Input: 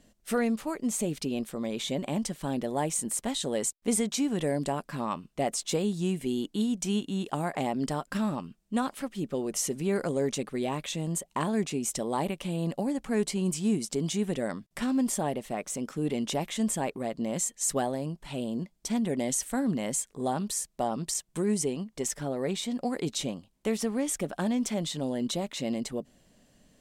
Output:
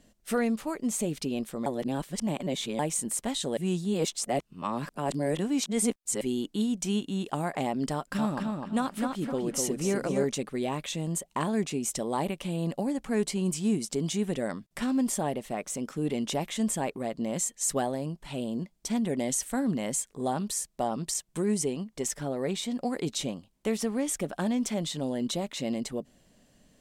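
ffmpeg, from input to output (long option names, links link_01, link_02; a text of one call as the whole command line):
ffmpeg -i in.wav -filter_complex "[0:a]asettb=1/sr,asplit=3[link_01][link_02][link_03];[link_01]atrim=end=7.934[link_04];[link_02]atrim=start=7.93:end=10.25,asetpts=PTS-STARTPTS,afade=type=in:duration=0.004:curve=qsin,afade=type=out:start_time=2.316:duration=0.004:curve=qsin,asplit=2[link_05][link_06];[link_06]adelay=253,lowpass=frequency=4700:poles=1,volume=-3.5dB,asplit=2[link_07][link_08];[link_08]adelay=253,lowpass=frequency=4700:poles=1,volume=0.31,asplit=2[link_09][link_10];[link_10]adelay=253,lowpass=frequency=4700:poles=1,volume=0.31,asplit=2[link_11][link_12];[link_12]adelay=253,lowpass=frequency=4700:poles=1,volume=0.31[link_13];[link_05][link_07][link_09][link_11][link_13]amix=inputs=5:normalize=0,atrim=end_sample=102312[link_14];[link_03]atrim=start=10.246[link_15];[link_04][link_14]acrossfade=duration=0.004:curve1=hsin:curve2=qsin[link_16];[link_16][link_15]acrossfade=duration=0.004:curve1=qsin:curve2=hsin,asplit=5[link_17][link_18][link_19][link_20][link_21];[link_17]atrim=end=1.662[link_22];[link_18]atrim=start=1.658:end=2.792,asetpts=PTS-STARTPTS,areverse[link_23];[link_19]atrim=start=2.788:end=3.572[link_24];[link_20]atrim=start=3.568:end=6.212,asetpts=PTS-STARTPTS,areverse[link_25];[link_21]atrim=start=6.208[link_26];[link_22][link_23]acrossfade=duration=0.004:curve1=hsin:curve2=hsin[link_27];[link_27][link_24]acrossfade=duration=0.004:curve1=hsin:curve2=hsin[link_28];[link_28][link_25]acrossfade=duration=0.004:curve1=hsin:curve2=hsin[link_29];[link_29][link_26]acrossfade=duration=0.004:curve1=hsin:curve2=hsin" out.wav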